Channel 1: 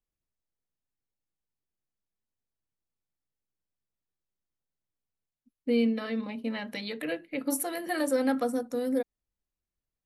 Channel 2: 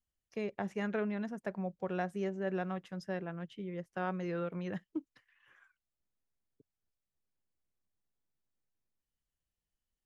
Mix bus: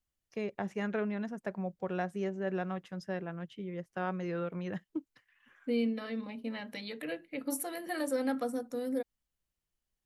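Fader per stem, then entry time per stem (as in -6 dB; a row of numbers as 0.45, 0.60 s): -5.5, +1.0 dB; 0.00, 0.00 s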